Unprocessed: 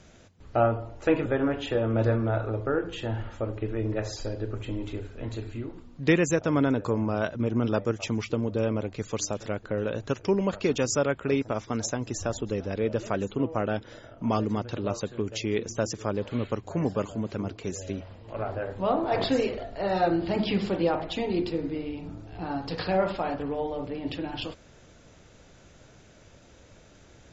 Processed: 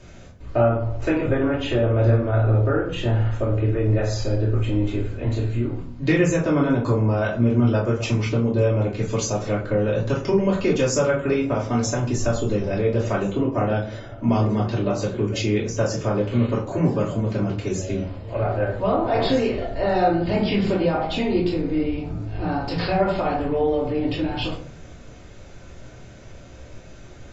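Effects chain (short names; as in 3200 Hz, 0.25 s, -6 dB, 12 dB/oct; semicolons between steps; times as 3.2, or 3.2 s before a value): compressor 2:1, threshold -28 dBFS, peak gain reduction 7 dB; reverb RT60 0.45 s, pre-delay 3 ms, DRR -7.5 dB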